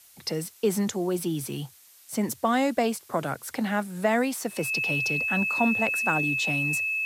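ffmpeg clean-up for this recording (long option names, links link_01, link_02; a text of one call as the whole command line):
ffmpeg -i in.wav -af "adeclick=threshold=4,bandreject=frequency=2600:width=30,afftdn=noise_reduction=18:noise_floor=-54" out.wav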